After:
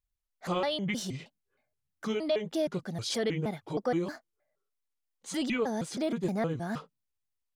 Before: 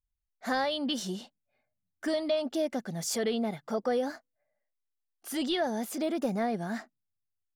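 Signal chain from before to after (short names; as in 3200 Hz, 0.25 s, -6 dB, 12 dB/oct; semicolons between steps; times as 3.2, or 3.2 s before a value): trilling pitch shifter -6.5 st, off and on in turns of 0.157 s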